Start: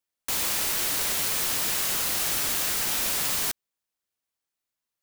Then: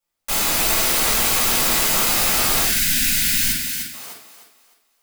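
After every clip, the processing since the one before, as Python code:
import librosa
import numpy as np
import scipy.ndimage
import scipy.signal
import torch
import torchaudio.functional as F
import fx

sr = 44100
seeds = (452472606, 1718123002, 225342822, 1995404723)

y = fx.echo_thinned(x, sr, ms=304, feedback_pct=31, hz=210.0, wet_db=-5.5)
y = fx.spec_box(y, sr, start_s=2.64, length_s=1.29, low_hz=320.0, high_hz=1400.0, gain_db=-22)
y = fx.room_shoebox(y, sr, seeds[0], volume_m3=330.0, walls='furnished', distance_m=6.7)
y = y * 10.0 ** (-2.0 / 20.0)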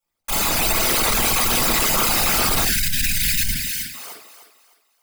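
y = fx.envelope_sharpen(x, sr, power=2.0)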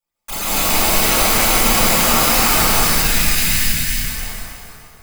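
y = fx.rev_plate(x, sr, seeds[1], rt60_s=2.9, hf_ratio=0.65, predelay_ms=115, drr_db=-8.5)
y = y * 10.0 ** (-4.0 / 20.0)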